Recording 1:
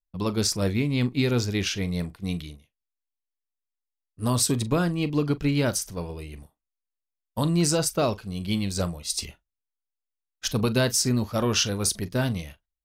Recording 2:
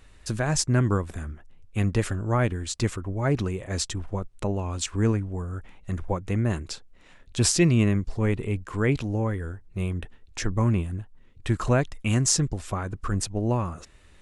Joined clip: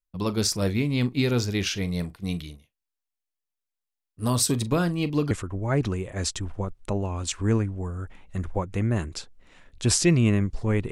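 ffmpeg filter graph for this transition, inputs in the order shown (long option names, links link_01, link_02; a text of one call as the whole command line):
ffmpeg -i cue0.wav -i cue1.wav -filter_complex "[0:a]apad=whole_dur=10.91,atrim=end=10.91,atrim=end=5.312[link_01];[1:a]atrim=start=2.848:end=8.45[link_02];[link_01][link_02]acrossfade=duration=0.004:curve1=hsin:curve2=hsin" out.wav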